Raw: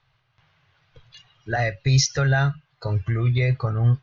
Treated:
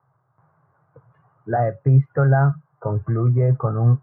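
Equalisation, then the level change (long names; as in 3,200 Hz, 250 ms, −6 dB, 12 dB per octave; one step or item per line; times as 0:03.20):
high-pass filter 120 Hz 24 dB per octave
Butterworth low-pass 1,300 Hz 36 dB per octave
+5.5 dB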